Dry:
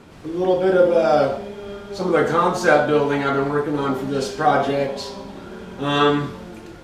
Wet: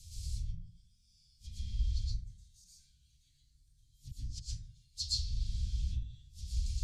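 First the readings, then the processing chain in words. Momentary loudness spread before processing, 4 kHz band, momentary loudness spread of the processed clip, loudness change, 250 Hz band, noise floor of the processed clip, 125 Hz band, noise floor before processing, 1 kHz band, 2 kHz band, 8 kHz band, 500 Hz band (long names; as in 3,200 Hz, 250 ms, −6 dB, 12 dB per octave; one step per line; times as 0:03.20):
18 LU, −11.5 dB, 19 LU, −20.5 dB, −36.5 dB, −70 dBFS, −10.0 dB, −40 dBFS, below −40 dB, below −40 dB, −8.5 dB, below −40 dB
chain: gate with flip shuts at −16 dBFS, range −35 dB
treble cut that deepens with the level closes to 1,800 Hz, closed at −27.5 dBFS
inverse Chebyshev band-stop filter 350–1,200 Hz, stop band 80 dB
dense smooth reverb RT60 0.68 s, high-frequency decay 0.35×, pre-delay 105 ms, DRR −8 dB
level +6.5 dB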